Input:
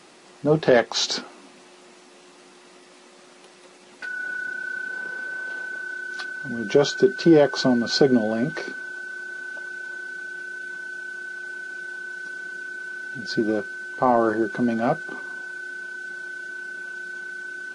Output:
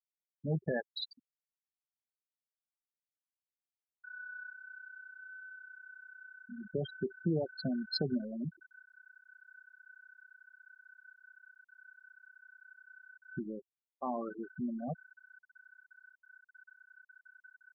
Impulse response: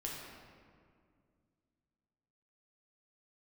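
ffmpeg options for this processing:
-af "afftfilt=real='re*gte(hypot(re,im),0.282)':imag='im*gte(hypot(re,im),0.282)':win_size=1024:overlap=0.75,firequalizer=gain_entry='entry(120,0);entry(330,-15);entry(3000,-3)':delay=0.05:min_phase=1,volume=-5dB"

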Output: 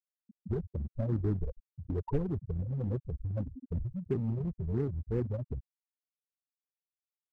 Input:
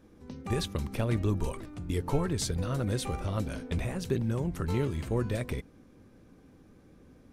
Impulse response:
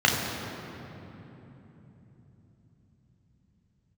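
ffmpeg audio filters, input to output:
-filter_complex "[0:a]lowpass=3.2k,afftfilt=real='re*gte(hypot(re,im),0.126)':imag='im*gte(hypot(re,im),0.126)':win_size=1024:overlap=0.75,asplit=2[a][b];[b]aeval=exprs='0.0188*(abs(mod(val(0)/0.0188+3,4)-2)-1)':c=same,volume=-10.5dB[c];[a][c]amix=inputs=2:normalize=0,volume=-2dB"

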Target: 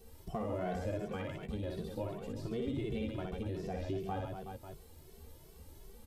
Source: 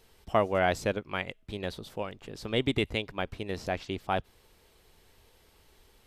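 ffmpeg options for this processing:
-filter_complex "[0:a]asplit=2[a][b];[b]adelay=13,volume=-10.5dB[c];[a][c]amix=inputs=2:normalize=0,asplit=2[d][e];[e]volume=27.5dB,asoftclip=hard,volume=-27.5dB,volume=-6dB[f];[d][f]amix=inputs=2:normalize=0,equalizer=f=2.3k:w=0.33:g=-14.5,aecho=1:1:60|138|239.4|371.2|542.6:0.631|0.398|0.251|0.158|0.1,acrossover=split=4200[g][h];[h]acompressor=threshold=-58dB:ratio=4:attack=1:release=60[i];[g][i]amix=inputs=2:normalize=0,acrossover=split=4900[j][k];[j]alimiter=limit=-23.5dB:level=0:latency=1:release=39[l];[l][k]amix=inputs=2:normalize=0,acompressor=threshold=-45dB:ratio=2,asplit=2[m][n];[n]adelay=2.2,afreqshift=2.7[o];[m][o]amix=inputs=2:normalize=1,volume=6.5dB"

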